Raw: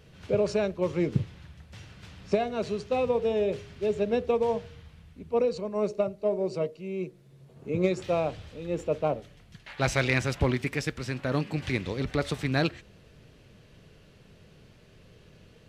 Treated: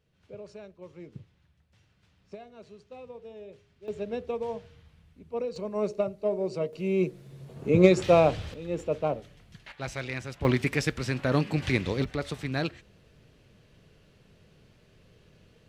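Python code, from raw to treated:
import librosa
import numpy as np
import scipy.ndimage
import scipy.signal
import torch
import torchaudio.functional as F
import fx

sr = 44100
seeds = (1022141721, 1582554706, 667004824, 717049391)

y = fx.gain(x, sr, db=fx.steps((0.0, -18.5), (3.88, -7.0), (5.56, -1.0), (6.73, 7.5), (8.54, -1.0), (9.72, -9.5), (10.45, 3.0), (12.04, -4.0)))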